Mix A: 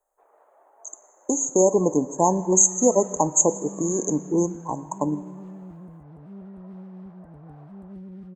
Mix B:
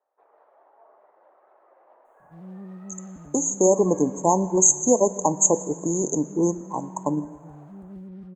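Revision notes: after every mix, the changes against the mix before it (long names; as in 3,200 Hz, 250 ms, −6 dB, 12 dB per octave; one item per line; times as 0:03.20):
speech: entry +2.05 s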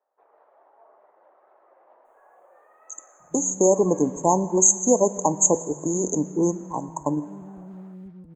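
second sound: entry +1.00 s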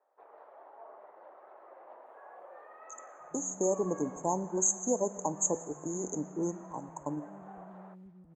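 speech −11.5 dB
first sound +4.5 dB
second sound −11.0 dB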